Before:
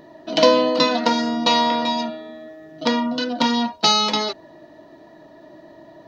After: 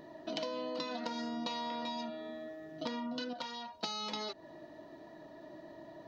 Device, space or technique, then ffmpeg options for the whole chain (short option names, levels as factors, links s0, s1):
serial compression, leveller first: -filter_complex "[0:a]acompressor=threshold=0.112:ratio=3,acompressor=threshold=0.0282:ratio=4,asettb=1/sr,asplit=3[s0][s1][s2];[s0]atrim=end=3.334[s3];[s1]atrim=start=3.33:end=3.75,asetpts=PTS-STARTPTS,afade=t=in:d=0.004:c=qsin,afade=t=out:st=0.416:d=0.004:c=qsin,equalizer=f=250:w=1.3:g=-13[s4];[s2]atrim=start=3.746[s5];[s3][s4]acrossfade=d=0.004:c1=hsin:c2=qsin[s6];[s6][s5]acrossfade=d=0.004:c1=qsin:c2=hsin,volume=0.473"